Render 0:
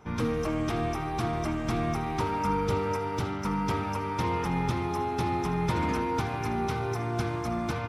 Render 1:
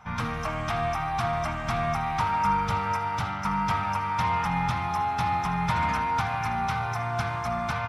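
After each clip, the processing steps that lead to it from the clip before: EQ curve 190 Hz 0 dB, 380 Hz -18 dB, 690 Hz +5 dB, 1400 Hz +7 dB, 9200 Hz -1 dB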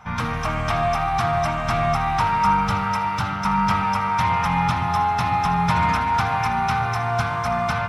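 split-band echo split 1000 Hz, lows 0.127 s, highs 0.25 s, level -8 dB; gain +5 dB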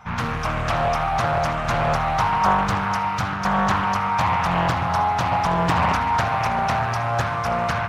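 Doppler distortion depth 0.79 ms

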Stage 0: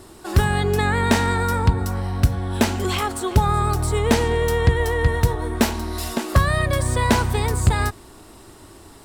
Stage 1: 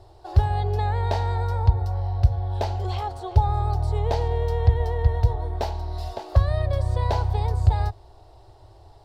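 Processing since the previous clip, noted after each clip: EQ curve 110 Hz 0 dB, 210 Hz -30 dB, 360 Hz -11 dB, 770 Hz +1 dB, 1200 Hz -15 dB, 2400 Hz -17 dB, 4500 Hz -9 dB, 8000 Hz -25 dB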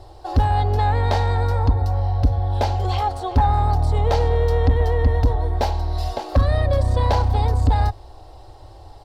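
soft clip -16.5 dBFS, distortion -10 dB; comb 3.8 ms, depth 36%; gain +7 dB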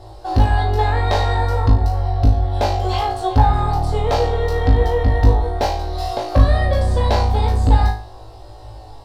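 flutter echo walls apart 3.2 m, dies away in 0.38 s; gain +1.5 dB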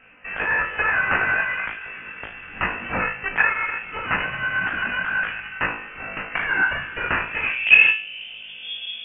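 self-modulated delay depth 0.29 ms; high-pass sweep 1900 Hz -> 81 Hz, 7.25–8.97; inverted band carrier 3400 Hz; gain +4 dB

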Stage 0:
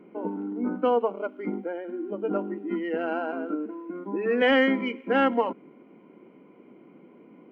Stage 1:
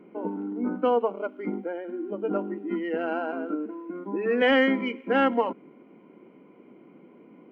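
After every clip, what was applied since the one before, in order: nothing audible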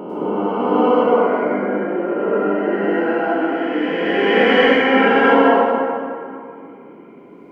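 spectral swells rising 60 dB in 2.85 s; plate-style reverb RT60 2.4 s, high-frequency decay 0.6×, pre-delay 90 ms, DRR -7.5 dB; gain -1.5 dB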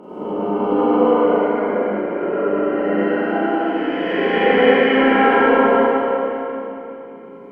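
treble ducked by the level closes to 2900 Hz, closed at -9.5 dBFS; transient shaper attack +7 dB, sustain -3 dB; Schroeder reverb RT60 2.8 s, combs from 30 ms, DRR -8.5 dB; gain -10.5 dB

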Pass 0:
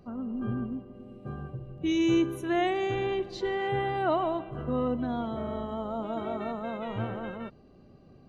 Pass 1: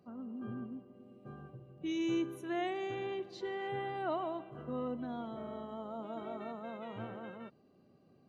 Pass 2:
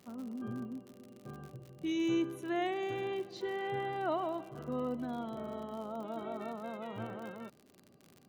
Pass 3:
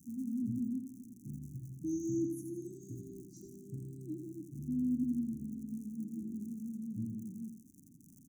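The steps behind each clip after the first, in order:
HPF 140 Hz 12 dB/oct; gain -9 dB
crackle 65/s -46 dBFS; gain +2 dB
Chebyshev band-stop 300–6100 Hz, order 5; feedback echo 84 ms, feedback 36%, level -6.5 dB; gain +4.5 dB

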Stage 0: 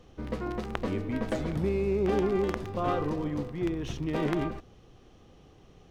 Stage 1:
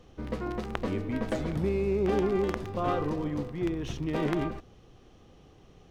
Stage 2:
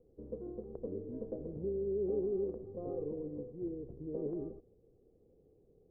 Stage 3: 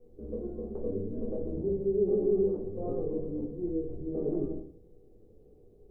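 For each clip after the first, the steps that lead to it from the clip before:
nothing audible
ladder low-pass 510 Hz, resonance 65%; gain -4 dB
shoebox room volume 280 m³, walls furnished, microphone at 3.5 m

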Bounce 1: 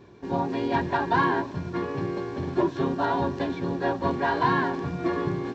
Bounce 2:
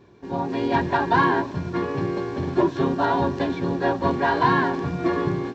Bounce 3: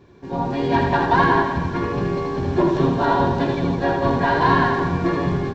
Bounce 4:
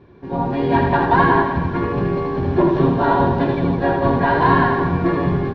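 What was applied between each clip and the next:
AGC gain up to 6 dB; gain -2 dB
octaver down 1 oct, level -5 dB; reverse bouncing-ball echo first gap 80 ms, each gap 1.1×, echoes 5; gain +1 dB
air absorption 240 m; gain +3 dB

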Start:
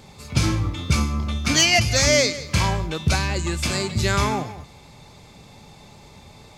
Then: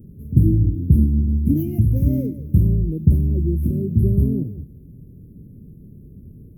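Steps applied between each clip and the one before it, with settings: inverse Chebyshev band-stop 800–7700 Hz, stop band 50 dB; gain +7 dB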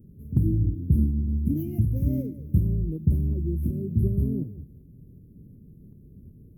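tremolo saw up 2.7 Hz, depth 30%; gain -5.5 dB

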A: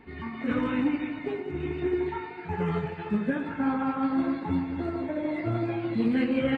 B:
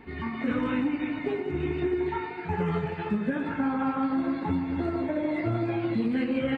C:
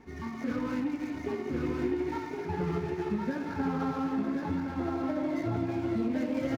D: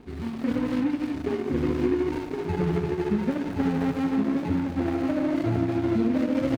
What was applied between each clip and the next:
compressor, threshold -27 dBFS, peak gain reduction 6.5 dB; gain +3.5 dB
median filter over 15 samples; echo 1.066 s -4 dB; gain -4.5 dB
median filter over 41 samples; gain +7 dB

